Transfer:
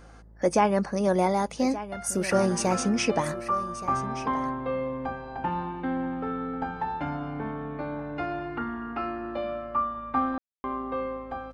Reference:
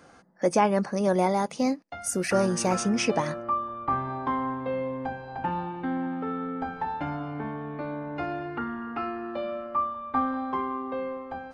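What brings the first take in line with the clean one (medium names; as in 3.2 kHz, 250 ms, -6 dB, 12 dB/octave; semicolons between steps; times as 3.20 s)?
de-hum 54.1 Hz, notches 11; room tone fill 10.38–10.64 s; inverse comb 1175 ms -14 dB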